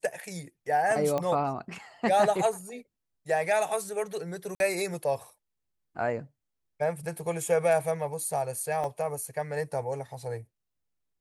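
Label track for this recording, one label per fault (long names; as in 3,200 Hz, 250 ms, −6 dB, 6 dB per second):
1.180000	1.180000	click −17 dBFS
4.550000	4.600000	drop-out 51 ms
8.840000	8.840000	drop-out 2.1 ms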